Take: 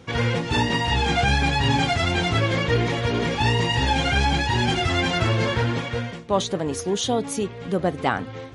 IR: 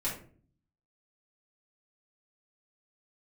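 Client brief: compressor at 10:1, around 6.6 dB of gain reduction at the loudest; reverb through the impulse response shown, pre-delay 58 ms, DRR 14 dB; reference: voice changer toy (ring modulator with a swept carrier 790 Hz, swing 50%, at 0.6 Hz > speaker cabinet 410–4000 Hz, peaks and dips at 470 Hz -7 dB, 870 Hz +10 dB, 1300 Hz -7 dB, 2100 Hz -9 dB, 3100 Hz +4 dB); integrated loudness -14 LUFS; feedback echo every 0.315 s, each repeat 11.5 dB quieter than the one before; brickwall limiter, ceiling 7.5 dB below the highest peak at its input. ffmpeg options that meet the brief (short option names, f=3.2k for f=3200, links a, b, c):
-filter_complex "[0:a]acompressor=threshold=-23dB:ratio=10,alimiter=limit=-21.5dB:level=0:latency=1,aecho=1:1:315|630|945:0.266|0.0718|0.0194,asplit=2[a][b];[1:a]atrim=start_sample=2205,adelay=58[c];[b][c]afir=irnorm=-1:irlink=0,volume=-19dB[d];[a][d]amix=inputs=2:normalize=0,aeval=exprs='val(0)*sin(2*PI*790*n/s+790*0.5/0.6*sin(2*PI*0.6*n/s))':c=same,highpass=410,equalizer=f=470:t=q:w=4:g=-7,equalizer=f=870:t=q:w=4:g=10,equalizer=f=1.3k:t=q:w=4:g=-7,equalizer=f=2.1k:t=q:w=4:g=-9,equalizer=f=3.1k:t=q:w=4:g=4,lowpass=f=4k:w=0.5412,lowpass=f=4k:w=1.3066,volume=18dB"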